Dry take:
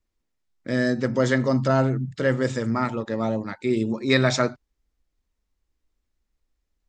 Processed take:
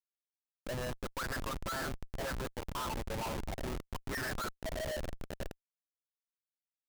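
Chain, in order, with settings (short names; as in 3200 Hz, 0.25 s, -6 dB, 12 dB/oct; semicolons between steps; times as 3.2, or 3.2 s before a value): high shelf 3400 Hz -9 dB; notches 60/120/180 Hz; diffused feedback echo 0.482 s, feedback 55%, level -13 dB; auto-wah 480–1800 Hz, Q 8.5, up, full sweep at -15 dBFS; Schmitt trigger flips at -43.5 dBFS; gain +5.5 dB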